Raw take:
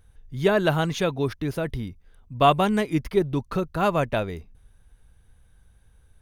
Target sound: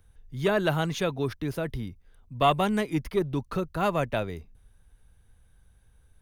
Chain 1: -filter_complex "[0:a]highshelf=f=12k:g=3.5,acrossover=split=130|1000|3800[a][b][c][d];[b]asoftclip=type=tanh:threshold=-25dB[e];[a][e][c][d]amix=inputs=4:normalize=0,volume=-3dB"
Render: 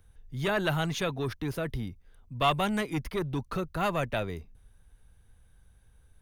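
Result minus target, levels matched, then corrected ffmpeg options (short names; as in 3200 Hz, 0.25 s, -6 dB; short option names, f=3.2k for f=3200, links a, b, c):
soft clip: distortion +11 dB
-filter_complex "[0:a]highshelf=f=12k:g=3.5,acrossover=split=130|1000|3800[a][b][c][d];[b]asoftclip=type=tanh:threshold=-13.5dB[e];[a][e][c][d]amix=inputs=4:normalize=0,volume=-3dB"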